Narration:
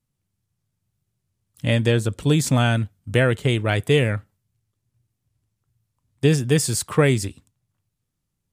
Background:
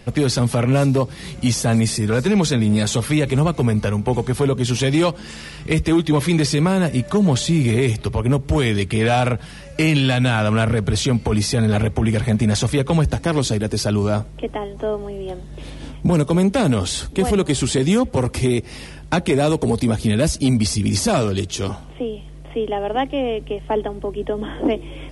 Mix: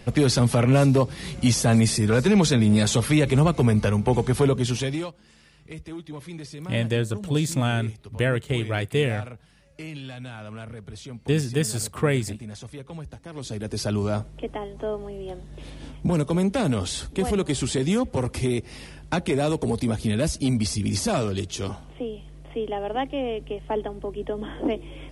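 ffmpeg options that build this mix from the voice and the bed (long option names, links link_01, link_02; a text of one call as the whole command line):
ffmpeg -i stem1.wav -i stem2.wav -filter_complex "[0:a]adelay=5050,volume=-5dB[link_01];[1:a]volume=13dB,afade=type=out:start_time=4.45:duration=0.67:silence=0.112202,afade=type=in:start_time=13.32:duration=0.56:silence=0.188365[link_02];[link_01][link_02]amix=inputs=2:normalize=0" out.wav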